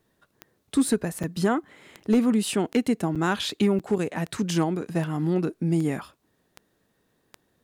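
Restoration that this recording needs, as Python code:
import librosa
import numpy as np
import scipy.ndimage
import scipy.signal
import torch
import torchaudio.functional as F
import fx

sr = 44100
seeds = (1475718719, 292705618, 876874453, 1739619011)

y = fx.fix_declip(x, sr, threshold_db=-13.5)
y = fx.fix_declick_ar(y, sr, threshold=10.0)
y = fx.fix_interpolate(y, sr, at_s=(1.23, 2.0, 3.15, 3.79), length_ms=6.7)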